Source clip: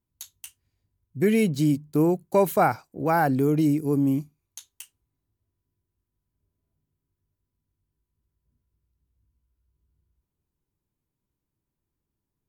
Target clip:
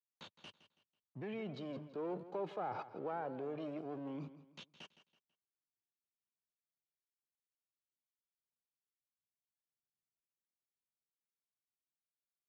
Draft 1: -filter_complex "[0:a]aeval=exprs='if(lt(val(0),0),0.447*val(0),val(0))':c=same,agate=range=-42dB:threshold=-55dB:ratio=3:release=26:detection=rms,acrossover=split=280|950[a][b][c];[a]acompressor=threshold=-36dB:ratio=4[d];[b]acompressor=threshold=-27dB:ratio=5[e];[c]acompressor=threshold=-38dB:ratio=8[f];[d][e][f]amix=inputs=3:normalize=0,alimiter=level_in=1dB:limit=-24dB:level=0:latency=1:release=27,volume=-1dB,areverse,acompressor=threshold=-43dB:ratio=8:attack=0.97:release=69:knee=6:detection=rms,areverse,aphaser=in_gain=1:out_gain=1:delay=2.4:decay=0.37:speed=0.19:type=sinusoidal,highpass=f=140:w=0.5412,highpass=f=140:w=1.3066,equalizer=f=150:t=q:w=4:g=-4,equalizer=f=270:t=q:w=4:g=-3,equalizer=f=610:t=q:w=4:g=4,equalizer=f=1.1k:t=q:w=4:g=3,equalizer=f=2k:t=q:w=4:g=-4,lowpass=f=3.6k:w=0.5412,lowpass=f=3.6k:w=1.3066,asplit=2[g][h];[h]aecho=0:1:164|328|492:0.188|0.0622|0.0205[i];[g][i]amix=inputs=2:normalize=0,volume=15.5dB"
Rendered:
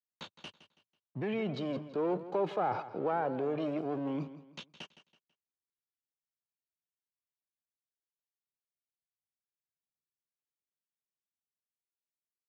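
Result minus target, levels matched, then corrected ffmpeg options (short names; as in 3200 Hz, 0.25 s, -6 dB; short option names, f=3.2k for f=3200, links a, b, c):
compressor: peak gain reduction -9 dB
-filter_complex "[0:a]aeval=exprs='if(lt(val(0),0),0.447*val(0),val(0))':c=same,agate=range=-42dB:threshold=-55dB:ratio=3:release=26:detection=rms,acrossover=split=280|950[a][b][c];[a]acompressor=threshold=-36dB:ratio=4[d];[b]acompressor=threshold=-27dB:ratio=5[e];[c]acompressor=threshold=-38dB:ratio=8[f];[d][e][f]amix=inputs=3:normalize=0,alimiter=level_in=1dB:limit=-24dB:level=0:latency=1:release=27,volume=-1dB,areverse,acompressor=threshold=-53.5dB:ratio=8:attack=0.97:release=69:knee=6:detection=rms,areverse,aphaser=in_gain=1:out_gain=1:delay=2.4:decay=0.37:speed=0.19:type=sinusoidal,highpass=f=140:w=0.5412,highpass=f=140:w=1.3066,equalizer=f=150:t=q:w=4:g=-4,equalizer=f=270:t=q:w=4:g=-3,equalizer=f=610:t=q:w=4:g=4,equalizer=f=1.1k:t=q:w=4:g=3,equalizer=f=2k:t=q:w=4:g=-4,lowpass=f=3.6k:w=0.5412,lowpass=f=3.6k:w=1.3066,asplit=2[g][h];[h]aecho=0:1:164|328|492:0.188|0.0622|0.0205[i];[g][i]amix=inputs=2:normalize=0,volume=15.5dB"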